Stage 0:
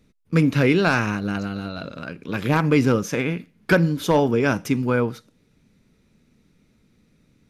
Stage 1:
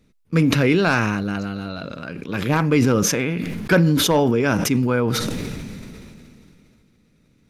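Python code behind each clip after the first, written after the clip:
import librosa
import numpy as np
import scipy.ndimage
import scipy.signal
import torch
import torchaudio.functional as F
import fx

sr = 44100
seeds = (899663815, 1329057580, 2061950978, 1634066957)

y = fx.sustainer(x, sr, db_per_s=21.0)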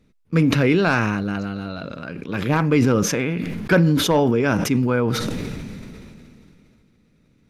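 y = fx.high_shelf(x, sr, hz=4600.0, db=-6.0)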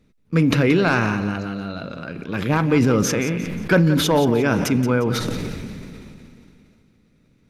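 y = fx.echo_feedback(x, sr, ms=177, feedback_pct=40, wet_db=-12)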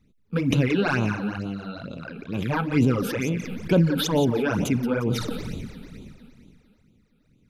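y = fx.phaser_stages(x, sr, stages=12, low_hz=100.0, high_hz=1800.0, hz=2.2, feedback_pct=25)
y = F.gain(torch.from_numpy(y), -2.5).numpy()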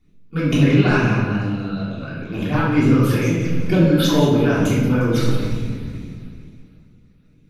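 y = fx.room_shoebox(x, sr, seeds[0], volume_m3=660.0, walls='mixed', distance_m=3.3)
y = F.gain(torch.from_numpy(y), -2.5).numpy()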